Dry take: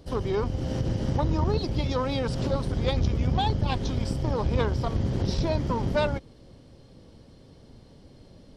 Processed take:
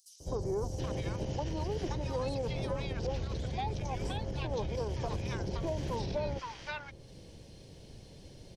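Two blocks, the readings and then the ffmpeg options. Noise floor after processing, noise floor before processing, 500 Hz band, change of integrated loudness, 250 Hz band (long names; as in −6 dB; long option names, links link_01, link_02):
−53 dBFS, −52 dBFS, −6.5 dB, −9.0 dB, −10.5 dB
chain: -filter_complex "[0:a]acrossover=split=1100|5800[link_01][link_02][link_03];[link_01]adelay=200[link_04];[link_02]adelay=720[link_05];[link_04][link_05][link_03]amix=inputs=3:normalize=0,alimiter=limit=-21.5dB:level=0:latency=1:release=60,highshelf=frequency=3600:gain=7.5,acrossover=split=370|1700|3600[link_06][link_07][link_08][link_09];[link_06]acompressor=threshold=-34dB:ratio=4[link_10];[link_07]acompressor=threshold=-33dB:ratio=4[link_11];[link_08]acompressor=threshold=-56dB:ratio=4[link_12];[link_09]acompressor=threshold=-57dB:ratio=4[link_13];[link_10][link_11][link_12][link_13]amix=inputs=4:normalize=0,equalizer=frequency=250:width_type=o:width=0.33:gain=-8,equalizer=frequency=1250:width_type=o:width=0.33:gain=-7,equalizer=frequency=2500:width_type=o:width=0.33:gain=4,equalizer=frequency=6300:width_type=o:width=0.33:gain=7"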